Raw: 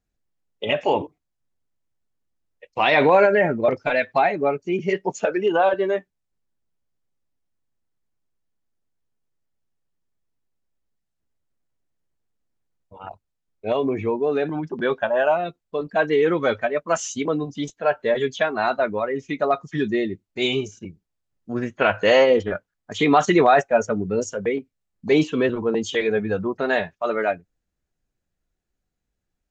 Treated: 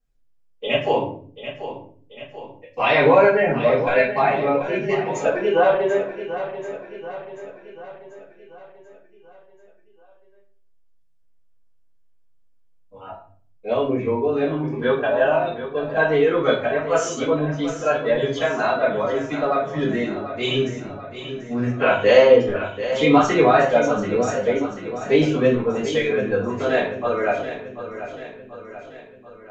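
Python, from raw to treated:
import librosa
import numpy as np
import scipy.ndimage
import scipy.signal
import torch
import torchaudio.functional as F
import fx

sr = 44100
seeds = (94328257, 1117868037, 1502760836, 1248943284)

p1 = fx.peak_eq(x, sr, hz=1100.0, db=2.0, octaves=0.77)
p2 = p1 + 0.34 * np.pad(p1, (int(7.4 * sr / 1000.0), 0))[:len(p1)]
p3 = p2 + fx.echo_feedback(p2, sr, ms=737, feedback_pct=53, wet_db=-11.5, dry=0)
p4 = fx.room_shoebox(p3, sr, seeds[0], volume_m3=43.0, walls='mixed', distance_m=2.2)
y = F.gain(torch.from_numpy(p4), -11.5).numpy()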